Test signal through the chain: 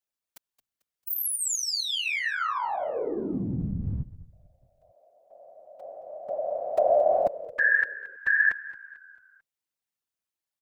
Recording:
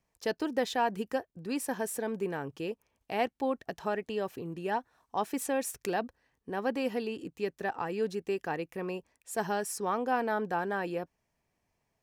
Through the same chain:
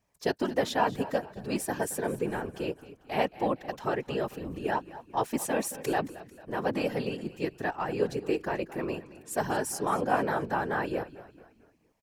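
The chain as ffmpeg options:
ffmpeg -i in.wav -filter_complex "[0:a]asplit=5[link_01][link_02][link_03][link_04][link_05];[link_02]adelay=222,afreqshift=-31,volume=-16.5dB[link_06];[link_03]adelay=444,afreqshift=-62,volume=-23.4dB[link_07];[link_04]adelay=666,afreqshift=-93,volume=-30.4dB[link_08];[link_05]adelay=888,afreqshift=-124,volume=-37.3dB[link_09];[link_01][link_06][link_07][link_08][link_09]amix=inputs=5:normalize=0,afftfilt=real='hypot(re,im)*cos(2*PI*random(0))':imag='hypot(re,im)*sin(2*PI*random(1))':win_size=512:overlap=0.75,volume=8.5dB" out.wav

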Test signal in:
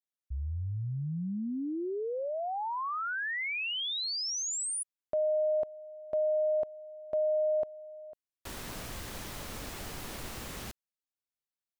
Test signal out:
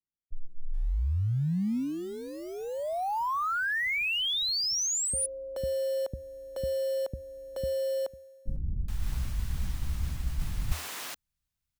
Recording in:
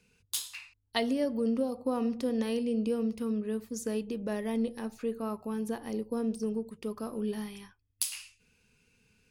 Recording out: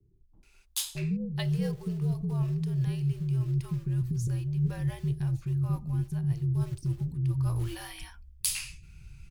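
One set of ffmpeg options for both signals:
ffmpeg -i in.wav -filter_complex "[0:a]asplit=2[link_01][link_02];[link_02]acrusher=bits=4:mode=log:mix=0:aa=0.000001,volume=-5dB[link_03];[link_01][link_03]amix=inputs=2:normalize=0,afreqshift=-80,acrossover=split=400[link_04][link_05];[link_05]adelay=430[link_06];[link_04][link_06]amix=inputs=2:normalize=0,asubboost=boost=11.5:cutoff=130,areverse,acompressor=threshold=-29dB:ratio=6:attack=32:release=969:knee=1:detection=peak,areverse,volume=2dB" out.wav

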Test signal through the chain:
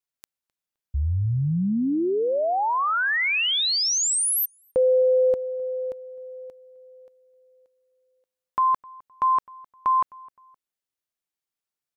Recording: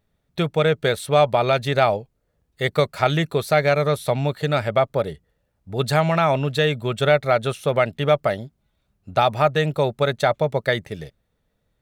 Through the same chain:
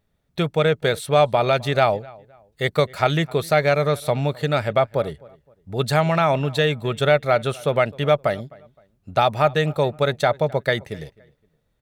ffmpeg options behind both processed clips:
ffmpeg -i in.wav -filter_complex "[0:a]asplit=2[link_01][link_02];[link_02]adelay=259,lowpass=frequency=2500:poles=1,volume=-23dB,asplit=2[link_03][link_04];[link_04]adelay=259,lowpass=frequency=2500:poles=1,volume=0.33[link_05];[link_01][link_03][link_05]amix=inputs=3:normalize=0" out.wav

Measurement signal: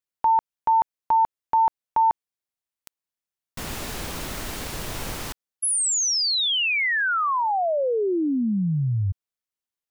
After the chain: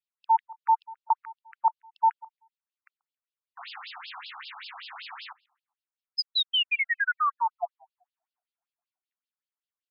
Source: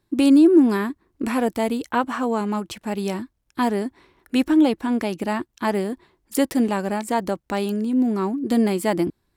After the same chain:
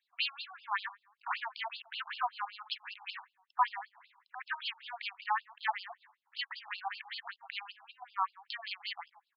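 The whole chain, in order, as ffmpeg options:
ffmpeg -i in.wav -filter_complex "[0:a]asplit=2[link_01][link_02];[link_02]adelay=136,lowpass=frequency=880:poles=1,volume=-18dB,asplit=2[link_03][link_04];[link_04]adelay=136,lowpass=frequency=880:poles=1,volume=0.41,asplit=2[link_05][link_06];[link_06]adelay=136,lowpass=frequency=880:poles=1,volume=0.41[link_07];[link_01][link_03][link_05][link_07]amix=inputs=4:normalize=0,afftfilt=real='re*between(b*sr/1024,950*pow(3800/950,0.5+0.5*sin(2*PI*5.2*pts/sr))/1.41,950*pow(3800/950,0.5+0.5*sin(2*PI*5.2*pts/sr))*1.41)':imag='im*between(b*sr/1024,950*pow(3800/950,0.5+0.5*sin(2*PI*5.2*pts/sr))/1.41,950*pow(3800/950,0.5+0.5*sin(2*PI*5.2*pts/sr))*1.41)':win_size=1024:overlap=0.75" out.wav

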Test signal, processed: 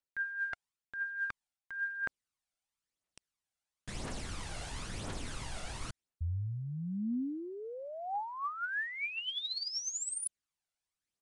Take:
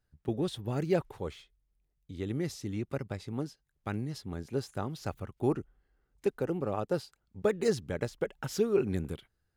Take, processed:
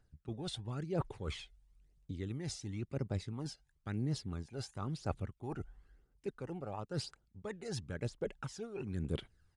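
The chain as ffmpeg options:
ffmpeg -i in.wav -af "areverse,acompressor=threshold=-43dB:ratio=6,areverse,aphaser=in_gain=1:out_gain=1:delay=1.5:decay=0.53:speed=0.98:type=triangular,aresample=22050,aresample=44100,volume=4dB" out.wav

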